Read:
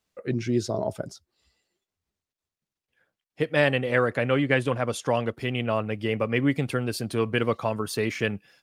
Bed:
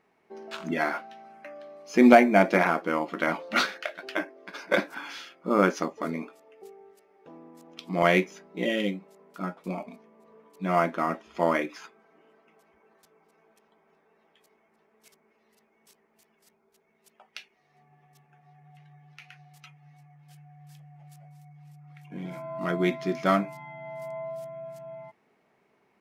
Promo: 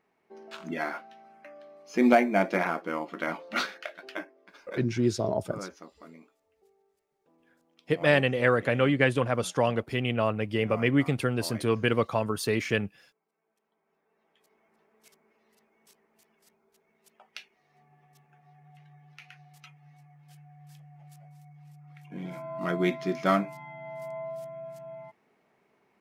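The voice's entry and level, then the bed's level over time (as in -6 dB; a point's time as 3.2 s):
4.50 s, -0.5 dB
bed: 4.06 s -5 dB
4.84 s -18.5 dB
13.32 s -18.5 dB
14.68 s -1 dB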